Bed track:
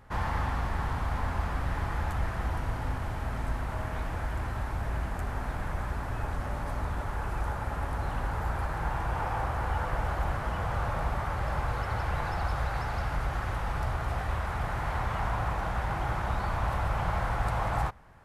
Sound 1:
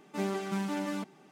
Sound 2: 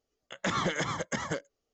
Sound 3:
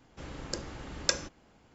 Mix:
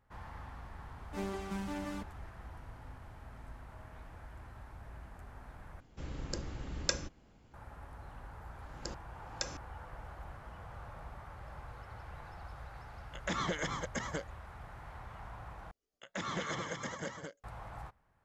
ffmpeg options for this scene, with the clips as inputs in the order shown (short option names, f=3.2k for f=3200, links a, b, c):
-filter_complex "[3:a]asplit=2[a][b];[2:a]asplit=2[c][d];[0:a]volume=-17.5dB[e];[a]lowshelf=f=170:g=10[f];[b]aeval=exprs='val(0)*pow(10,-31*if(lt(mod(-1.6*n/s,1),2*abs(-1.6)/1000),1-mod(-1.6*n/s,1)/(2*abs(-1.6)/1000),(mod(-1.6*n/s,1)-2*abs(-1.6)/1000)/(1-2*abs(-1.6)/1000))/20)':c=same[g];[d]aecho=1:1:154.5|215.7:0.316|0.631[h];[e]asplit=3[i][j][k];[i]atrim=end=5.804[l];[f]atrim=end=1.74,asetpts=PTS-STARTPTS,volume=-5dB[m];[j]atrim=start=7.536:end=15.714[n];[h]atrim=end=1.73,asetpts=PTS-STARTPTS,volume=-9dB[o];[k]atrim=start=17.436[p];[1:a]atrim=end=1.31,asetpts=PTS-STARTPTS,volume=-6.5dB,afade=t=in:d=0.004:c=hsin,afade=t=out:st=1.306:d=0.004:c=hsin,adelay=990[q];[g]atrim=end=1.74,asetpts=PTS-STARTPTS,volume=-3.5dB,afade=t=in:d=0.004:c=hsin,afade=t=out:st=1.736:d=0.004:c=hsin,adelay=8320[r];[c]atrim=end=1.73,asetpts=PTS-STARTPTS,volume=-5.5dB,afade=t=in:d=0.004:c=hsin,afade=t=out:st=1.726:d=0.004:c=hsin,adelay=12830[s];[l][m]acrossfade=d=0.004:c1=hsin:c2=hsin[t];[t][n]acrossfade=d=0.004:c1=hsin:c2=hsin[u];[u][o]acrossfade=d=0.004:c1=hsin:c2=hsin[v];[v][p]acrossfade=d=0.004:c1=hsin:c2=hsin[w];[w][q][r][s]amix=inputs=4:normalize=0"